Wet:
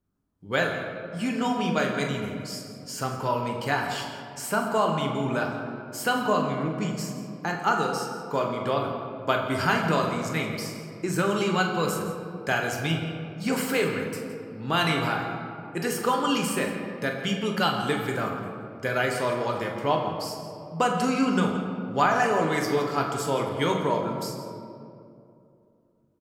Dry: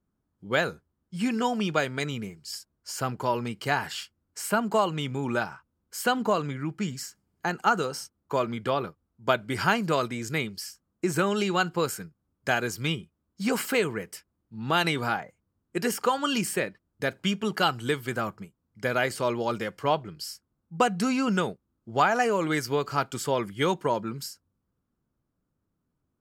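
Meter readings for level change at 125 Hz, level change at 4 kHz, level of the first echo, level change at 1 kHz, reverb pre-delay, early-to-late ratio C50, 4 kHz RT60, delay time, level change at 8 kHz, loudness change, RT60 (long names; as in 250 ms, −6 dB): +2.5 dB, +0.5 dB, −9.0 dB, +1.5 dB, 7 ms, 4.0 dB, 1.2 s, 43 ms, 0.0 dB, +1.0 dB, 2.6 s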